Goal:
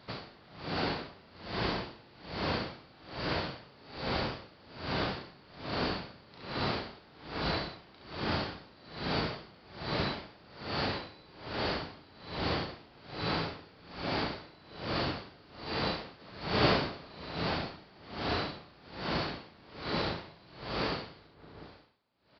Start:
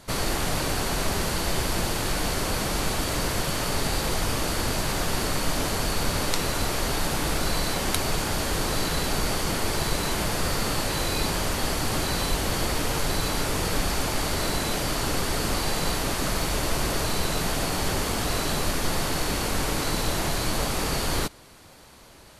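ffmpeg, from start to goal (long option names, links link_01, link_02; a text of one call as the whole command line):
ffmpeg -i in.wav -filter_complex "[0:a]highpass=94,asplit=2[link_01][link_02];[link_02]adelay=181,lowpass=frequency=1400:poles=1,volume=-4dB,asplit=2[link_03][link_04];[link_04]adelay=181,lowpass=frequency=1400:poles=1,volume=0.34,asplit=2[link_05][link_06];[link_06]adelay=181,lowpass=frequency=1400:poles=1,volume=0.34,asplit=2[link_07][link_08];[link_08]adelay=181,lowpass=frequency=1400:poles=1,volume=0.34[link_09];[link_03][link_05][link_07][link_09]amix=inputs=4:normalize=0[link_10];[link_01][link_10]amix=inputs=2:normalize=0,asplit=3[link_11][link_12][link_13];[link_11]afade=type=out:start_time=16.19:duration=0.02[link_14];[link_12]acontrast=76,afade=type=in:start_time=16.19:duration=0.02,afade=type=out:start_time=17.24:duration=0.02[link_15];[link_13]afade=type=in:start_time=17.24:duration=0.02[link_16];[link_14][link_15][link_16]amix=inputs=3:normalize=0,aresample=11025,aresample=44100,asplit=2[link_17][link_18];[link_18]aecho=0:1:36|68:0.562|0.531[link_19];[link_17][link_19]amix=inputs=2:normalize=0,aeval=exprs='val(0)*pow(10,-27*(0.5-0.5*cos(2*PI*1.2*n/s))/20)':channel_layout=same,volume=-5.5dB" out.wav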